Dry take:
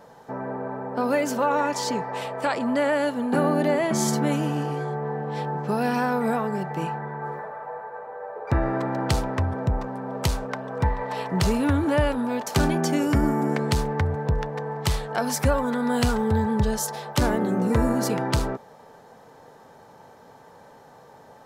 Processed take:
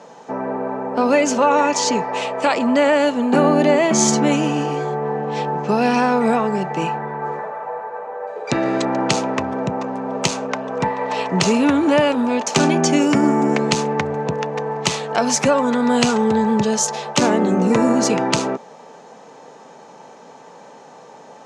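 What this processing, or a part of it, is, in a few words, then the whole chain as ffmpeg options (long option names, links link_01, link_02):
television speaker: -filter_complex "[0:a]asettb=1/sr,asplit=3[link_01][link_02][link_03];[link_01]atrim=end=8.274[link_04];[link_02]atrim=start=8.27:end=8.85,asetpts=PTS-STARTPTS,afade=type=in:duration=0.004:curve=qsin,afade=type=out:start_time=0.576:duration=0.004:curve=qsin,equalizer=frequency=1000:width_type=o:width=1:gain=-5,equalizer=frequency=4000:width_type=o:width=1:gain=10,equalizer=frequency=8000:width_type=o:width=1:gain=12[link_05];[link_03]atrim=start=8.846[link_06];[link_04][link_05]acrossfade=duration=0.004:curve1=hsin:curve2=qsin[link_07];[link_07][link_06]acrossfade=duration=0.004:curve1=qsin:curve2=hsin,highpass=frequency=170:width=0.5412,highpass=frequency=170:width=1.3066,equalizer=frequency=1600:width_type=q:width=4:gain=-4,equalizer=frequency=2600:width_type=q:width=4:gain=6,equalizer=frequency=6500:width_type=q:width=4:gain=7,lowpass=frequency=8100:width=0.5412,lowpass=frequency=8100:width=1.3066,volume=7.5dB"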